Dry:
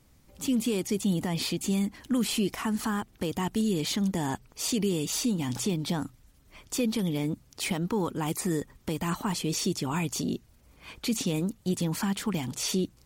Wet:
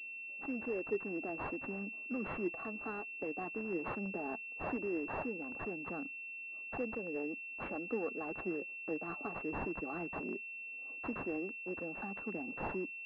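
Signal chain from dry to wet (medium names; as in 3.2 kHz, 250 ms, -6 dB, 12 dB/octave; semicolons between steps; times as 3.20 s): local Wiener filter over 25 samples; Bessel high-pass 410 Hz, order 6; flange 0.16 Hz, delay 0.1 ms, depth 7.2 ms, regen +44%; Butterworth band-stop 960 Hz, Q 4; class-D stage that switches slowly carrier 2.7 kHz; trim +1.5 dB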